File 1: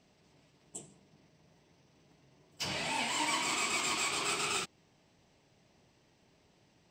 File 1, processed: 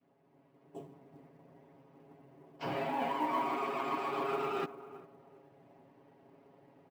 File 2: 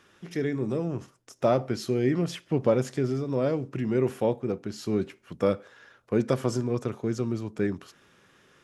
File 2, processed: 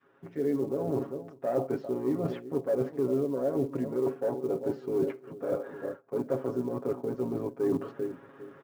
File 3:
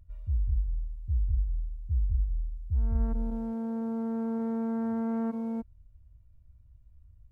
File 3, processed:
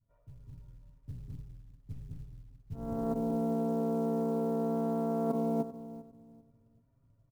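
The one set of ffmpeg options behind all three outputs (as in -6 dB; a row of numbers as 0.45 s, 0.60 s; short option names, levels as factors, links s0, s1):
-filter_complex "[0:a]asplit=2[s0][s1];[s1]adelay=398,lowpass=f=860:p=1,volume=0.126,asplit=2[s2][s3];[s3]adelay=398,lowpass=f=860:p=1,volume=0.29,asplit=2[s4][s5];[s5]adelay=398,lowpass=f=860:p=1,volume=0.29[s6];[s2][s4][s6]amix=inputs=3:normalize=0[s7];[s0][s7]amix=inputs=2:normalize=0,dynaudnorm=f=150:g=9:m=2.82,adynamicequalizer=threshold=0.0316:dfrequency=520:dqfactor=0.77:tfrequency=520:tqfactor=0.77:attack=5:release=100:ratio=0.375:range=3:mode=boostabove:tftype=bell,asoftclip=type=tanh:threshold=0.398,highpass=220,areverse,acompressor=threshold=0.0501:ratio=20,areverse,tremolo=f=64:d=0.621,lowpass=1100,aecho=1:1:7.3:0.91,acrusher=bits=8:mode=log:mix=0:aa=0.000001,volume=1.12"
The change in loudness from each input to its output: -3.0 LU, -3.5 LU, -0.5 LU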